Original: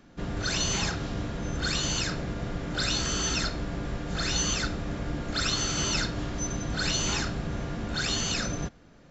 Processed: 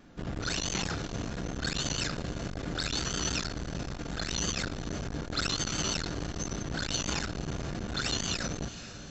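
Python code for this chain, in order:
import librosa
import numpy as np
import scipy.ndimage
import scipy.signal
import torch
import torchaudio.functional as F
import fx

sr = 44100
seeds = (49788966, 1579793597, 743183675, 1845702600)

y = fx.vibrato(x, sr, rate_hz=6.1, depth_cents=51.0)
y = fx.echo_diffused(y, sr, ms=482, feedback_pct=52, wet_db=-15.5)
y = fx.transformer_sat(y, sr, knee_hz=530.0)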